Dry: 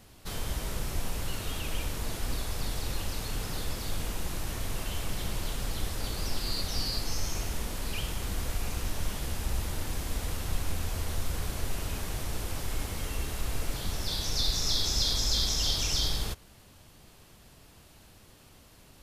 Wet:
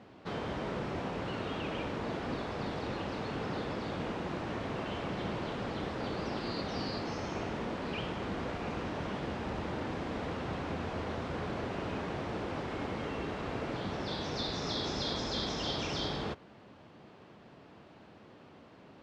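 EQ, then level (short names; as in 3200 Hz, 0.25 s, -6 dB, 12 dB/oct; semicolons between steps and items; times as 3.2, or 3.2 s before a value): HPF 200 Hz 12 dB/oct; tape spacing loss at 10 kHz 40 dB; +8.0 dB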